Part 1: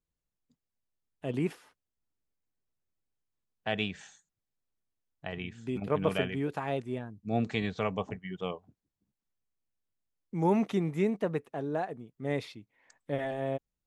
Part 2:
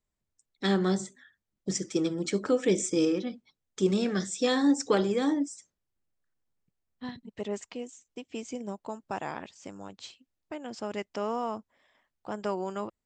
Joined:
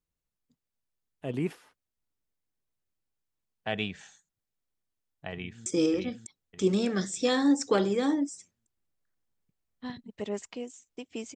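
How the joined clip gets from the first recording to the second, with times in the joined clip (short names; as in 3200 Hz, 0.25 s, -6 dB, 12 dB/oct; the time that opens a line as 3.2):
part 1
5.33–5.66 echo throw 0.6 s, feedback 40%, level -4 dB
5.66 switch to part 2 from 2.85 s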